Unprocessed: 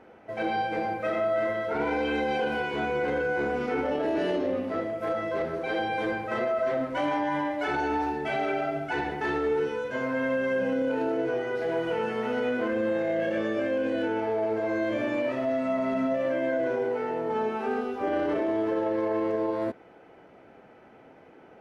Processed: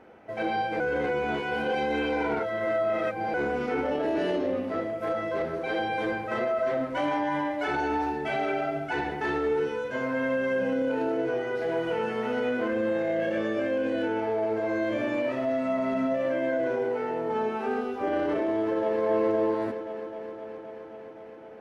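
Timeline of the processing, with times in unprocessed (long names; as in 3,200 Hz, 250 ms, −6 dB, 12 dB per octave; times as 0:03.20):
0:00.80–0:03.34: reverse
0:18.56–0:19.02: delay throw 260 ms, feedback 80%, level −4 dB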